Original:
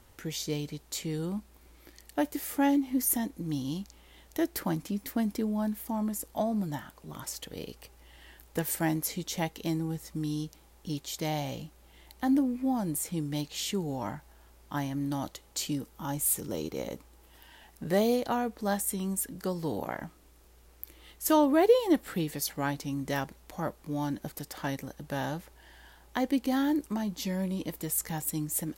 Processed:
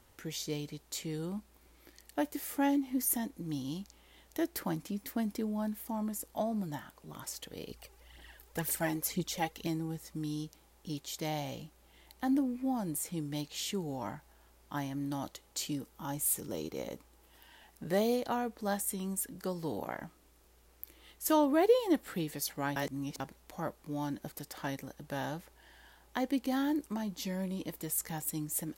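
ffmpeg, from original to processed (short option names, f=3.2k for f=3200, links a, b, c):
-filter_complex "[0:a]asettb=1/sr,asplit=3[a][b][c];[a]atrim=end=7.704[d];[b]atrim=start=7.7:end=9.67,asetpts=PTS-STARTPTS,afade=t=in:d=0.004:c=qsin,afade=t=out:st=1.966:d=0.004:c=qsin,aphaser=in_gain=1:out_gain=1:delay=2.7:decay=0.56:speed=2:type=triangular[e];[c]atrim=start=9.666[f];[d][e]acrossfade=d=0.004:c1=hsin:c2=qsin[g];[g][f]acrossfade=d=0.004:c1=qsin:c2=hsin,asplit=3[h][i][j];[h]atrim=end=22.762[k];[i]atrim=start=22.758:end=23.202,asetpts=PTS-STARTPTS,areverse[l];[j]atrim=start=23.198[m];[k][l]acrossfade=d=0.004:c1=hsin:c2=hsin[n];[n][m]acrossfade=d=0.004:c1=hsin:c2=hsin,lowshelf=f=140:g=-4,volume=-3.5dB"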